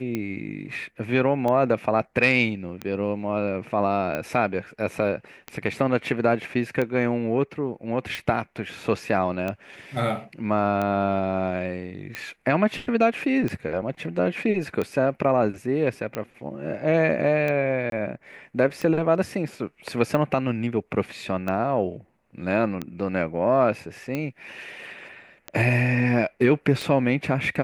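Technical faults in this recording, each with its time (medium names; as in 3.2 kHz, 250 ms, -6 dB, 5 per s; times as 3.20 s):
tick 45 rpm -15 dBFS
17.90–17.92 s: dropout 22 ms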